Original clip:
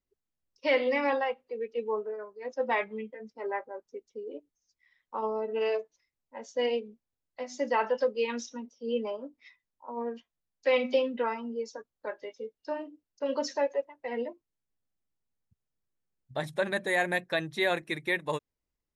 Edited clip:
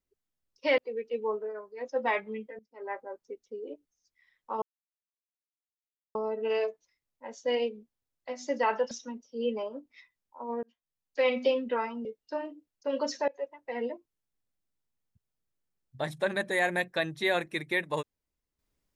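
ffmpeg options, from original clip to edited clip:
-filter_complex "[0:a]asplit=8[a][b][c][d][e][f][g][h];[a]atrim=end=0.782[i];[b]atrim=start=1.418:end=3.23,asetpts=PTS-STARTPTS,afade=t=out:st=1.808:d=0.004:c=hsin:silence=0.125893[j];[c]atrim=start=3.23:end=5.26,asetpts=PTS-STARTPTS,afade=t=in:d=0.4:c=qua:silence=0.125893,afade=t=out:st=2.026:d=0.004:c=hsin,apad=pad_dur=1.53[k];[d]atrim=start=5.26:end=8.022,asetpts=PTS-STARTPTS,afade=t=in:d=0.004:c=hsin[l];[e]atrim=start=8.388:end=10.11,asetpts=PTS-STARTPTS,afade=t=out:st=1.718:d=0.004:c=hsin[m];[f]atrim=start=10.11:end=11.532,asetpts=PTS-STARTPTS,afade=t=in:d=0.86:c=qsin[n];[g]atrim=start=12.408:end=13.64,asetpts=PTS-STARTPTS,afade=t=out:st=1.228:d=0.004:c=hsin:silence=0.0630957[o];[h]atrim=start=13.64,asetpts=PTS-STARTPTS,afade=t=in:d=0.27:silence=0.0630957[p];[j][k][l]concat=n=3:v=0:a=1[q];[i][q]acrossfade=d=0.004:c1=hsin:c2=hsin[r];[m][n]concat=n=2:v=0:a=1[s];[r][s]acrossfade=d=0.004:c1=hsin:c2=hsin[t];[o][p]concat=n=2:v=0:a=1[u];[t][u]acrossfade=d=0.004:c1=hsin:c2=hsin"

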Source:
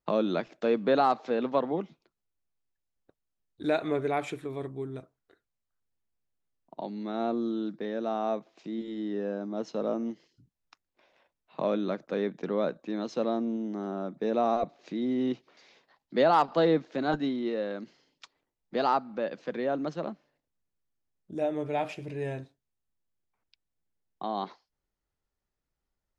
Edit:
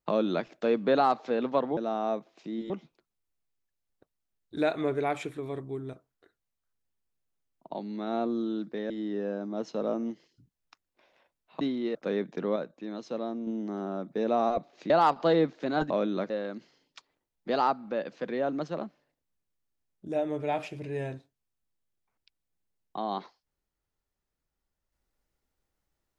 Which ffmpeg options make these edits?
-filter_complex "[0:a]asplit=11[a][b][c][d][e][f][g][h][i][j][k];[a]atrim=end=1.772[l];[b]atrim=start=7.968:end=8.902[m];[c]atrim=start=1.768:end=7.972[n];[d]atrim=start=8.898:end=11.612[o];[e]atrim=start=17.218:end=17.562[p];[f]atrim=start=12.008:end=12.622[q];[g]atrim=start=12.618:end=13.532,asetpts=PTS-STARTPTS,volume=-5dB[r];[h]atrim=start=13.528:end=14.962[s];[i]atrim=start=16.218:end=17.222[t];[j]atrim=start=11.608:end=12.012[u];[k]atrim=start=17.558[v];[l][m]acrossfade=d=0.004:c1=hsin:c2=hsin[w];[w][n]acrossfade=d=0.004:c1=hsin:c2=hsin[x];[x][o]acrossfade=d=0.004:c1=hsin:c2=hsin[y];[y][p]acrossfade=d=0.004:c1=hsin:c2=hsin[z];[z][q]acrossfade=d=0.004:c1=hsin:c2=hsin[aa];[aa][r]acrossfade=d=0.004:c1=hsin:c2=hsin[ab];[ab][s]acrossfade=d=0.004:c1=hsin:c2=hsin[ac];[ac][t]acrossfade=d=0.004:c1=hsin:c2=hsin[ad];[ad][u]acrossfade=d=0.004:c1=hsin:c2=hsin[ae];[ae][v]acrossfade=d=0.004:c1=hsin:c2=hsin"

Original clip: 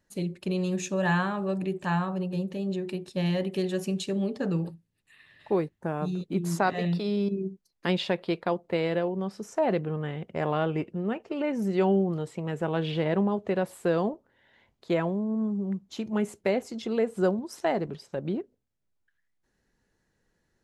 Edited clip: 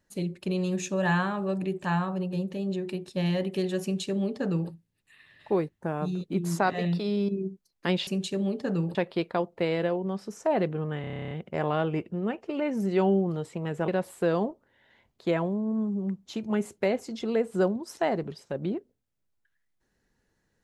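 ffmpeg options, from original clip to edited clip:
-filter_complex "[0:a]asplit=14[a][b][c][d][e][f][g][h][i][j][k][l][m][n];[a]atrim=end=8.072[o];[b]atrim=start=3.828:end=4.712[p];[c]atrim=start=8.068:end=10.162[q];[d]atrim=start=10.128:end=10.162[r];[e]atrim=start=10.128:end=10.162[s];[f]atrim=start=10.128:end=10.162[t];[g]atrim=start=10.128:end=10.162[u];[h]atrim=start=10.128:end=10.162[v];[i]atrim=start=10.128:end=10.162[w];[j]atrim=start=10.128:end=10.162[x];[k]atrim=start=10.128:end=10.162[y];[l]atrim=start=10.128:end=10.162[z];[m]atrim=start=10.128:end=12.702[aa];[n]atrim=start=13.508[ab];[o][p]acrossfade=d=0.004:c1=hsin:c2=hsin[ac];[ac][q]acrossfade=d=0.004:c1=hsin:c2=hsin[ad];[ad][r]acrossfade=d=0.004:c1=hsin:c2=hsin[ae];[ae][s]acrossfade=d=0.004:c1=hsin:c2=hsin[af];[af][t]acrossfade=d=0.004:c1=hsin:c2=hsin[ag];[ag][u]acrossfade=d=0.004:c1=hsin:c2=hsin[ah];[ah][v]acrossfade=d=0.004:c1=hsin:c2=hsin[ai];[ai][w]acrossfade=d=0.004:c1=hsin:c2=hsin[aj];[aj][x]acrossfade=d=0.004:c1=hsin:c2=hsin[ak];[ak][y]acrossfade=d=0.004:c1=hsin:c2=hsin[al];[al][z]acrossfade=d=0.004:c1=hsin:c2=hsin[am];[am][aa]acrossfade=d=0.004:c1=hsin:c2=hsin[an];[an][ab]acrossfade=d=0.004:c1=hsin:c2=hsin"

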